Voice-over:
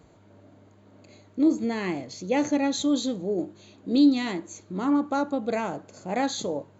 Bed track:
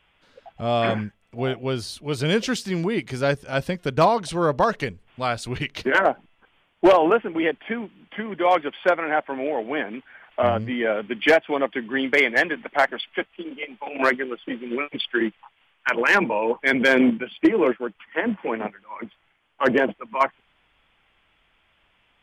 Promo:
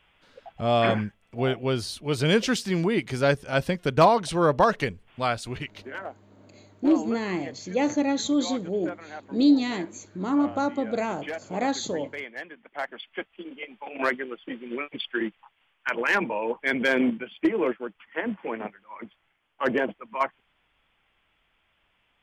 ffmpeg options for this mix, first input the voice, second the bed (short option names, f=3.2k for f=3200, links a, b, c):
-filter_complex "[0:a]adelay=5450,volume=0dB[a];[1:a]volume=12.5dB,afade=t=out:st=5.18:d=0.71:silence=0.125893,afade=t=in:st=12.62:d=0.76:silence=0.237137[b];[a][b]amix=inputs=2:normalize=0"